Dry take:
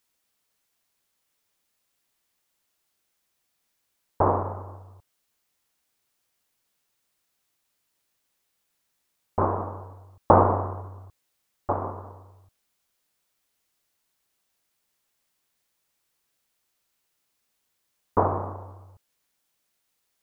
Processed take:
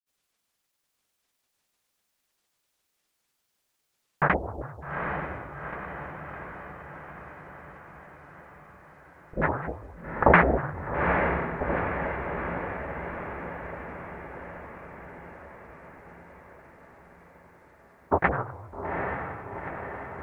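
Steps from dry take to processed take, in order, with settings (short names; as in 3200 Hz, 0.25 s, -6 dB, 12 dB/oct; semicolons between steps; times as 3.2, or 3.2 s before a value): grains, pitch spread up and down by 12 st; diffused feedback echo 0.822 s, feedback 64%, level -5 dB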